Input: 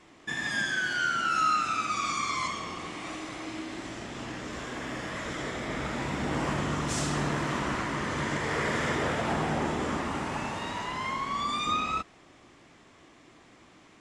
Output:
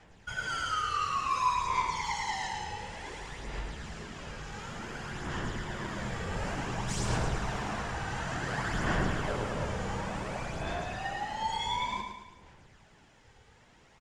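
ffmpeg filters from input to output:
ffmpeg -i in.wav -filter_complex "[0:a]aphaser=in_gain=1:out_gain=1:delay=2.8:decay=0.49:speed=0.56:type=sinusoidal,afreqshift=-270,atempo=1,asplit=2[link_01][link_02];[link_02]aecho=0:1:108|216|324|432|540|648:0.501|0.241|0.115|0.0554|0.0266|0.0128[link_03];[link_01][link_03]amix=inputs=2:normalize=0,volume=-5.5dB" out.wav

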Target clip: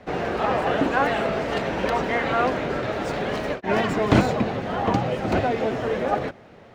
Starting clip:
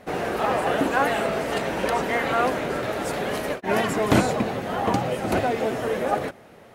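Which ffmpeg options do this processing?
ffmpeg -i in.wav -filter_complex "[0:a]lowshelf=frequency=140:gain=5.5,acrossover=split=230|560|6600[link_01][link_02][link_03][link_04];[link_04]acrusher=samples=27:mix=1:aa=0.000001[link_05];[link_01][link_02][link_03][link_05]amix=inputs=4:normalize=0" out.wav

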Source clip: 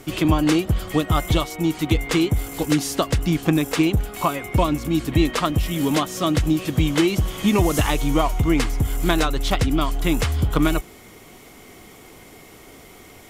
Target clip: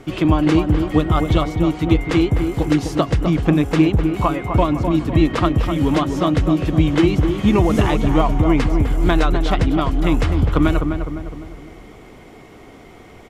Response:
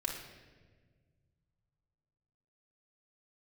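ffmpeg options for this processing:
-filter_complex "[0:a]aemphasis=mode=reproduction:type=75fm,asplit=2[link_01][link_02];[link_02]adelay=254,lowpass=frequency=1400:poles=1,volume=-5.5dB,asplit=2[link_03][link_04];[link_04]adelay=254,lowpass=frequency=1400:poles=1,volume=0.5,asplit=2[link_05][link_06];[link_06]adelay=254,lowpass=frequency=1400:poles=1,volume=0.5,asplit=2[link_07][link_08];[link_08]adelay=254,lowpass=frequency=1400:poles=1,volume=0.5,asplit=2[link_09][link_10];[link_10]adelay=254,lowpass=frequency=1400:poles=1,volume=0.5,asplit=2[link_11][link_12];[link_12]adelay=254,lowpass=frequency=1400:poles=1,volume=0.5[link_13];[link_01][link_03][link_05][link_07][link_09][link_11][link_13]amix=inputs=7:normalize=0,volume=2dB"

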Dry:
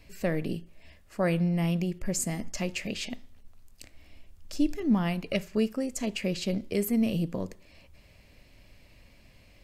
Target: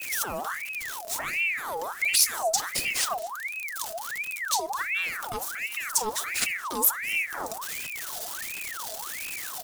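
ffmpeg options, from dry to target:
ffmpeg -i in.wav -filter_complex "[0:a]aeval=exprs='val(0)+0.5*0.00794*sgn(val(0))':channel_layout=same,adynamicequalizer=threshold=0.00282:dfrequency=4500:dqfactor=0.76:tfrequency=4500:tqfactor=0.76:attack=5:release=100:ratio=0.375:range=3.5:mode=cutabove:tftype=bell,acompressor=threshold=-29dB:ratio=10,alimiter=level_in=4.5dB:limit=-24dB:level=0:latency=1:release=12,volume=-4.5dB,aexciter=amount=6.1:drive=3.9:freq=4200,aphaser=in_gain=1:out_gain=1:delay=4.7:decay=0.49:speed=1.4:type=sinusoidal,asplit=2[link_01][link_02];[link_02]aecho=0:1:233|466:0.0794|0.0222[link_03];[link_01][link_03]amix=inputs=2:normalize=0,aeval=exprs='val(0)*sin(2*PI*1600*n/s+1600*0.6/1.4*sin(2*PI*1.4*n/s))':channel_layout=same,volume=4.5dB" out.wav

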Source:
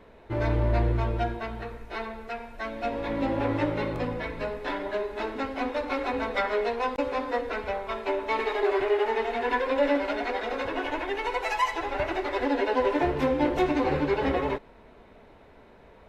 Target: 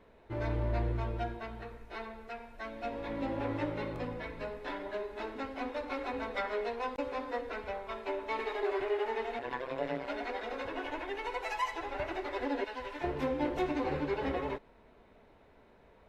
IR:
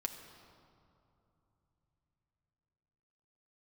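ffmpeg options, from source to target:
-filter_complex "[0:a]asettb=1/sr,asplit=3[link_01][link_02][link_03];[link_01]atrim=end=9.394[link_04];[link_02]atrim=start=9.39:end=10.07,asetpts=PTS-STARTPTS,afade=type=in:duration=0.004:curve=qsin,afade=type=out:start_time=0.676:duration=0.004:curve=qsin,tremolo=f=130:d=0.947[link_05];[link_03]atrim=start=10.066[link_06];[link_04][link_05]acrossfade=duration=0.004:curve1=hsin:curve2=qsin[link_07];[link_07][link_06]acrossfade=duration=0.004:curve1=qsin:curve2=hsin,asettb=1/sr,asplit=3[link_08][link_09][link_10];[link_08]atrim=end=12.644[link_11];[link_09]atrim=start=12.64:end=13.04,asetpts=PTS-STARTPTS,afade=type=in:duration=0.004:curve=qsin,afade=type=out:start_time=0.396:duration=0.004:curve=qsin,equalizer=frequency=390:width_type=o:width=2.5:gain=-13[link_12];[link_10]atrim=start=13.036[link_13];[link_11][link_12]acrossfade=duration=0.004:curve1=hsin:curve2=qsin[link_14];[link_14][link_13]acrossfade=duration=0.004:curve1=qsin:curve2=hsin,volume=-8dB"

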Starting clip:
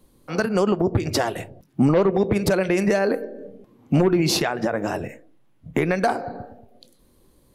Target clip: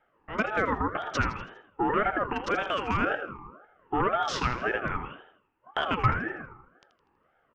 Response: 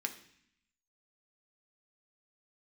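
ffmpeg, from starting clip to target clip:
-filter_complex "[0:a]acrossover=split=330|1500|2400[link_01][link_02][link_03][link_04];[link_04]acrusher=bits=4:mix=0:aa=0.000001[link_05];[link_01][link_02][link_03][link_05]amix=inputs=4:normalize=0,asettb=1/sr,asplit=3[link_06][link_07][link_08];[link_06]atrim=end=1.894[link_09];[link_07]atrim=start=1.89:end=3.01,asetpts=PTS-STARTPTS,afade=type=in:duration=0.004:curve=qsin,afade=type=out:start_time=1.116:duration=0.004:curve=qsin,afreqshift=-74[link_10];[link_08]atrim=start=3.006[link_11];[link_09][link_10]acrossfade=duration=0.004:curve1=hsin:curve2=qsin[link_12];[link_12][link_11]acrossfade=duration=0.004:curve1=qsin:curve2=hsin,highpass=frequency=150:width=0.5412,highpass=frequency=150:width=1.3066,equalizer=frequency=660:width_type=q:width=4:gain=9,equalizer=frequency=1200:width_type=q:width=4:gain=6,equalizer=frequency=2100:width_type=q:width=4:gain=10,equalizer=frequency=3200:width_type=q:width=4:gain=-9,lowpass=frequency=5100:width=0.5412,lowpass=frequency=5100:width=1.3066,aecho=1:1:81|162|243|324|405:0.282|0.127|0.0571|0.0257|0.0116,aeval=exprs='val(0)*sin(2*PI*830*n/s+830*0.3/1.9*sin(2*PI*1.9*n/s))':channel_layout=same,volume=-6dB"

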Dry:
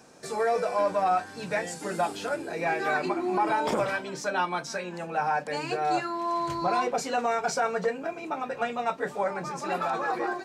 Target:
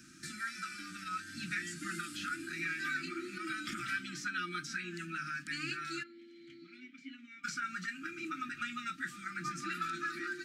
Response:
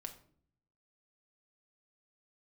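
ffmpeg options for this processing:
-filter_complex "[0:a]acrossover=split=680|3300[link_01][link_02][link_03];[link_01]acompressor=threshold=-41dB:ratio=4[link_04];[link_02]acompressor=threshold=-33dB:ratio=4[link_05];[link_03]acompressor=threshold=-47dB:ratio=4[link_06];[link_04][link_05][link_06]amix=inputs=3:normalize=0,asplit=3[link_07][link_08][link_09];[link_07]afade=type=out:start_time=6.02:duration=0.02[link_10];[link_08]asplit=3[link_11][link_12][link_13];[link_11]bandpass=frequency=270:width_type=q:width=8,volume=0dB[link_14];[link_12]bandpass=frequency=2290:width_type=q:width=8,volume=-6dB[link_15];[link_13]bandpass=frequency=3010:width_type=q:width=8,volume=-9dB[link_16];[link_14][link_15][link_16]amix=inputs=3:normalize=0,afade=type=in:start_time=6.02:duration=0.02,afade=type=out:start_time=7.43:duration=0.02[link_17];[link_09]afade=type=in:start_time=7.43:duration=0.02[link_18];[link_10][link_17][link_18]amix=inputs=3:normalize=0,afftfilt=real='re*(1-between(b*sr/4096,360,1200))':imag='im*(1-between(b*sr/4096,360,1200))':win_size=4096:overlap=0.75"

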